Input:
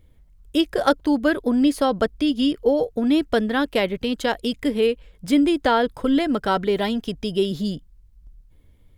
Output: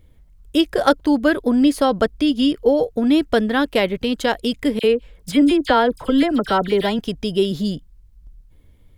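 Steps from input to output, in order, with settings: 4.79–6.99 s: phase dispersion lows, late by 46 ms, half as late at 2.1 kHz; trim +3 dB

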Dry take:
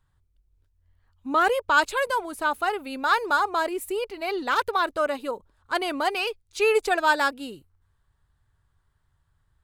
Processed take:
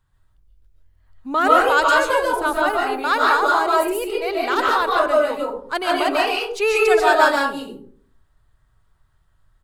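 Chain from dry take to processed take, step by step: 2.08–2.67 s: bass shelf 180 Hz +9 dB; delay 92 ms -21.5 dB; reverberation RT60 0.55 s, pre-delay 100 ms, DRR -3.5 dB; trim +1.5 dB

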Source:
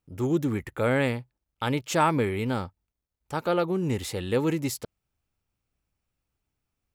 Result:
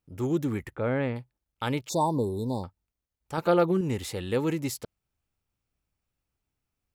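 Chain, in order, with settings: 0.75–1.16 s: tape spacing loss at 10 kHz 29 dB; 1.89–2.64 s: brick-wall FIR band-stop 1.1–3.5 kHz; 3.37–3.81 s: comb 5.9 ms, depth 91%; trim -2 dB

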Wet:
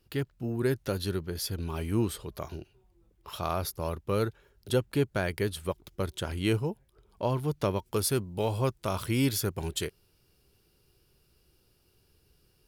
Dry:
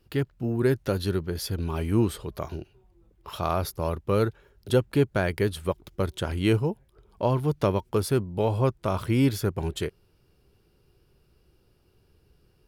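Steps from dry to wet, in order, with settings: treble shelf 2.9 kHz +6 dB, from 7.86 s +12 dB; trim -5 dB

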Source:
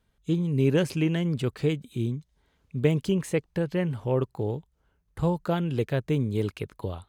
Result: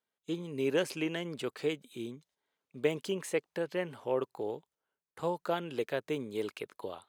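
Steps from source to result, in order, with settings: gate -52 dBFS, range -10 dB; high-pass 390 Hz 12 dB/octave; trim -2.5 dB

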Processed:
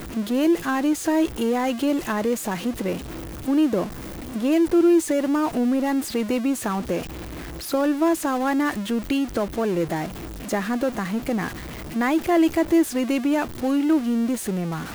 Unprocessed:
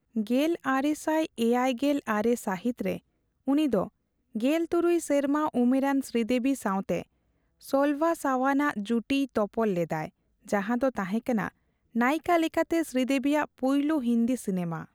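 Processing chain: jump at every zero crossing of -29 dBFS; peaking EQ 330 Hz +8 dB 0.26 oct

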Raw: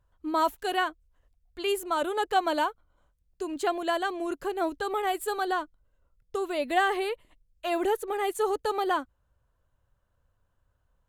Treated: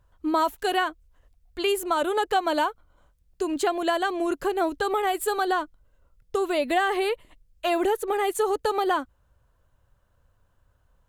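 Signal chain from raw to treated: compression 3:1, threshold -28 dBFS, peak gain reduction 7.5 dB; trim +7 dB

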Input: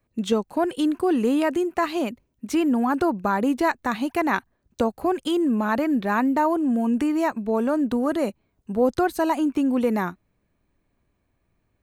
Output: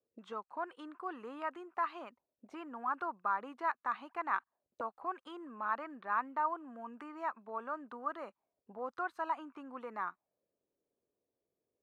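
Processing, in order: auto-wah 460–1200 Hz, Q 3.7, up, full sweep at -23 dBFS; dynamic bell 3 kHz, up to +4 dB, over -49 dBFS, Q 1.6; trim -4.5 dB

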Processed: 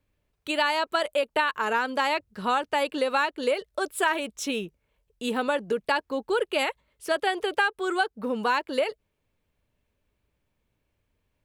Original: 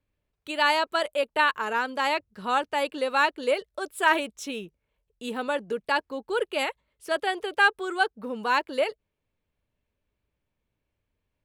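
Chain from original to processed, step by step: compression 6:1, threshold -26 dBFS, peak gain reduction 11 dB; trim +5 dB

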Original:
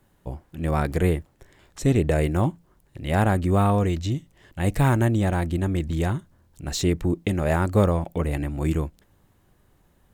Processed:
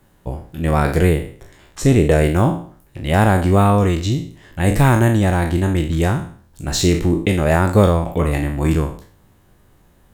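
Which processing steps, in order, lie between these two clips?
spectral sustain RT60 0.48 s; trim +6 dB

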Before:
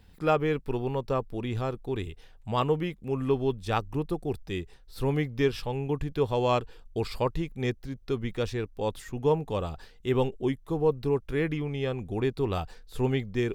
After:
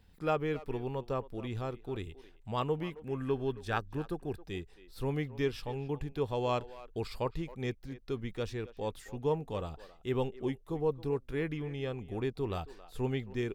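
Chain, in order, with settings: 2.91–4.42 s: peaking EQ 1.6 kHz +13.5 dB 0.21 oct; speakerphone echo 270 ms, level -16 dB; trim -6.5 dB

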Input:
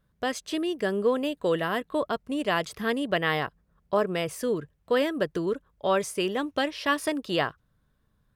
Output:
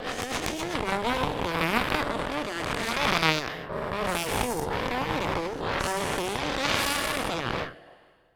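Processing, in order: every event in the spectrogram widened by 480 ms; in parallel at -1.5 dB: peak limiter -11 dBFS, peak gain reduction 8.5 dB; on the sum: plate-style reverb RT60 1.8 s, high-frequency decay 0.9×, DRR 15.5 dB; rotary cabinet horn 8 Hz, later 0.8 Hz, at 0.51 s; Chebyshev shaper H 3 -7 dB, 4 -9 dB, 6 -23 dB, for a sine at -0.5 dBFS; trim -4 dB

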